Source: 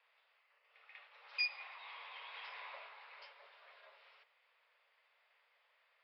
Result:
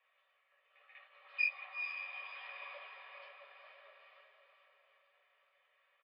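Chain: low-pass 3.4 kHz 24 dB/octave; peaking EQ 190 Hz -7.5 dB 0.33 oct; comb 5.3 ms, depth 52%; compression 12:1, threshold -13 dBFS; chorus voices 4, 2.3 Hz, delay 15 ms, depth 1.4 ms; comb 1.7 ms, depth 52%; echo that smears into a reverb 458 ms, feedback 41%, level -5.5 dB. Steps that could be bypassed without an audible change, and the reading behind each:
peaking EQ 190 Hz: input has nothing below 400 Hz; compression, threshold -13 dBFS: peak at its input -25.0 dBFS

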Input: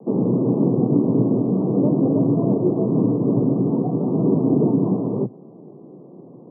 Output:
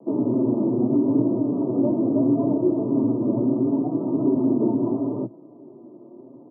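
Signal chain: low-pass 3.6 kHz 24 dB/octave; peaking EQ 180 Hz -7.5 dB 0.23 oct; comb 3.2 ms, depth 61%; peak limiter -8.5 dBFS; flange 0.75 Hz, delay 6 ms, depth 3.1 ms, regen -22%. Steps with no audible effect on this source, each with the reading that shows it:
low-pass 3.6 kHz: input has nothing above 910 Hz

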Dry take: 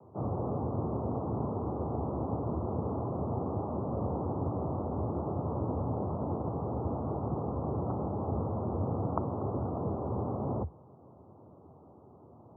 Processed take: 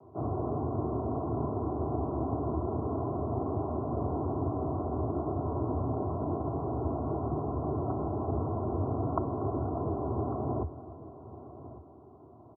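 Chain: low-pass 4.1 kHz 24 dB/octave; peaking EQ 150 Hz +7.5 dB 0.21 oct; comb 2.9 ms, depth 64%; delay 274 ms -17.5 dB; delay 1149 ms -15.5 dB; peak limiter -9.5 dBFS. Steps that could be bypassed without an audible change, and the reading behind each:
low-pass 4.1 kHz: input has nothing above 1.3 kHz; peak limiter -9.5 dBFS: peak at its input -13.5 dBFS

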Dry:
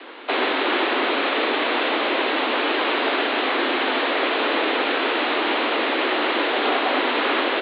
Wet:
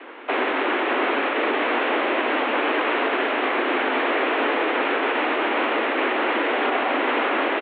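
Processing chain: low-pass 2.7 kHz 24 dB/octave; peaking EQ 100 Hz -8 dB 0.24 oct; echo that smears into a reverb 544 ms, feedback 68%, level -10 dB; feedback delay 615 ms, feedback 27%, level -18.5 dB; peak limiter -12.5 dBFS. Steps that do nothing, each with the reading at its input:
peaking EQ 100 Hz: input has nothing below 190 Hz

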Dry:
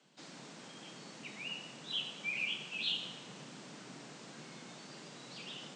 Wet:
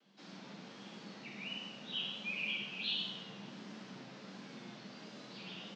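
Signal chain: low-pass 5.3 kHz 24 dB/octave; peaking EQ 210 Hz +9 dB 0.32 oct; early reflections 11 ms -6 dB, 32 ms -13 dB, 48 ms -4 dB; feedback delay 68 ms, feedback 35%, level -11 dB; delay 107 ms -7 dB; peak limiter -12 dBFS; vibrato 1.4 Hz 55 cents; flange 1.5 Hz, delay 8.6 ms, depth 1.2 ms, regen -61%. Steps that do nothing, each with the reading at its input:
peak limiter -12 dBFS: peak at its input -20.0 dBFS

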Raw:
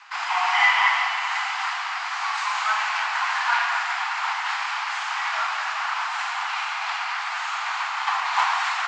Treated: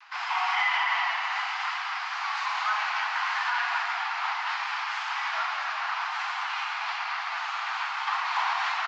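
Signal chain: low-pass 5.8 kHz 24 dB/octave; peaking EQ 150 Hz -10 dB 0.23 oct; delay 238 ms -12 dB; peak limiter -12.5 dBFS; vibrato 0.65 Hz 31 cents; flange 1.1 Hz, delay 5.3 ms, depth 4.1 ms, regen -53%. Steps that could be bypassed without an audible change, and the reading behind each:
peaking EQ 150 Hz: input has nothing below 600 Hz

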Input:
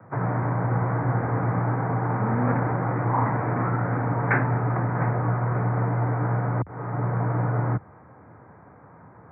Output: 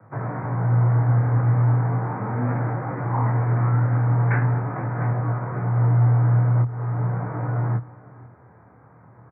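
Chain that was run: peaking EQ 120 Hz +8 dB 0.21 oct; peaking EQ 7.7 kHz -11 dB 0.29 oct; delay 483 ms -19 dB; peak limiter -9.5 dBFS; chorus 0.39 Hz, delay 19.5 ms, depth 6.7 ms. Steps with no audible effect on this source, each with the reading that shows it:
peaking EQ 7.7 kHz: input has nothing above 450 Hz

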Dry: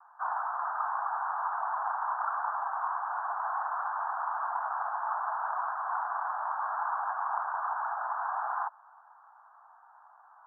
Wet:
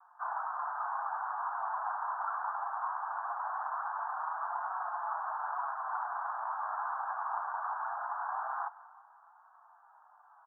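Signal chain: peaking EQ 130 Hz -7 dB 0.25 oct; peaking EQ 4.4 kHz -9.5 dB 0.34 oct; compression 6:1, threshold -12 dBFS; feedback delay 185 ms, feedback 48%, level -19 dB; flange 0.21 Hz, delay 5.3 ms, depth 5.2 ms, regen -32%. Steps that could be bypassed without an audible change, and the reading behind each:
peaking EQ 130 Hz: input has nothing below 570 Hz; peaking EQ 4.4 kHz: input has nothing above 1.8 kHz; compression, threshold -12 dBFS: peak at its input -18.5 dBFS

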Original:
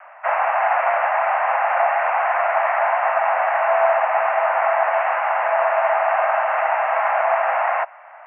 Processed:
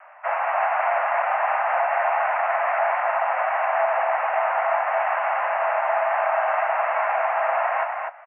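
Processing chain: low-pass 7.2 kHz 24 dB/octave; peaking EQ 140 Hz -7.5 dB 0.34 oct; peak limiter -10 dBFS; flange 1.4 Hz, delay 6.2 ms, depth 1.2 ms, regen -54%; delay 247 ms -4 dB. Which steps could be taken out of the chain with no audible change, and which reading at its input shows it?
low-pass 7.2 kHz: input has nothing above 2.7 kHz; peaking EQ 140 Hz: input has nothing below 510 Hz

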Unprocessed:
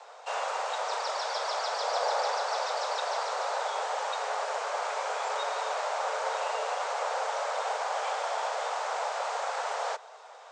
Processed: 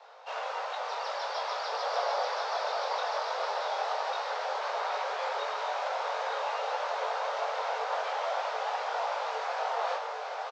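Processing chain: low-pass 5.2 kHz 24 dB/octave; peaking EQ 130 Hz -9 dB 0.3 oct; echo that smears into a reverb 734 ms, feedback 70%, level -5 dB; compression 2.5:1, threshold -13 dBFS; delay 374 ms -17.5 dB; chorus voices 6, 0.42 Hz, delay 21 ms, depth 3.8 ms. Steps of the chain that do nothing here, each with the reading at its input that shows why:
peaking EQ 130 Hz: input has nothing below 360 Hz; compression, threshold -13 dBFS: peak at its input -16.0 dBFS

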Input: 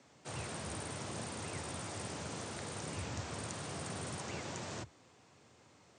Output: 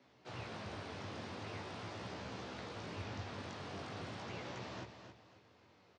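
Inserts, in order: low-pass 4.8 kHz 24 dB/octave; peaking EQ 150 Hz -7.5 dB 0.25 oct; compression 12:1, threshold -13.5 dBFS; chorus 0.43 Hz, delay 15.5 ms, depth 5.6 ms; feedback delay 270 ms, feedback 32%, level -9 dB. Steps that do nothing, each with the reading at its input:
compression, threshold -13.5 dBFS: peak at its input -29.0 dBFS

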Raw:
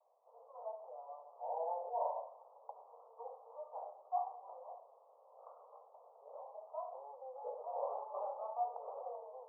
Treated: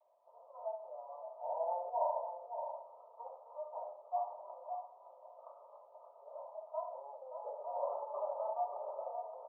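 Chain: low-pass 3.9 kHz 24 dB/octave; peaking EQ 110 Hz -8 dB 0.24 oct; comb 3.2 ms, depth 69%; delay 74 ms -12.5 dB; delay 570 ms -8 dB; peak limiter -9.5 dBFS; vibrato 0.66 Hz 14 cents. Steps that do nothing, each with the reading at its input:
low-pass 3.9 kHz: input has nothing above 1.2 kHz; peaking EQ 110 Hz: input has nothing below 400 Hz; peak limiter -9.5 dBFS: peak at its input -21.5 dBFS

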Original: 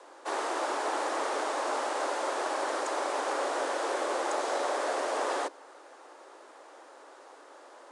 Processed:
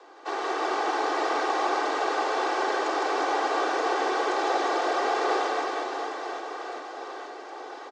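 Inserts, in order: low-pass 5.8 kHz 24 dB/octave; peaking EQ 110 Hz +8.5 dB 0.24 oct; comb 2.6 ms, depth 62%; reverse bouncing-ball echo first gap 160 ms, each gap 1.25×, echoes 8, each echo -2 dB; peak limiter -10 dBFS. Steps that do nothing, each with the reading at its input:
peaking EQ 110 Hz: input has nothing below 230 Hz; peak limiter -10 dBFS: peak at its input -12.5 dBFS

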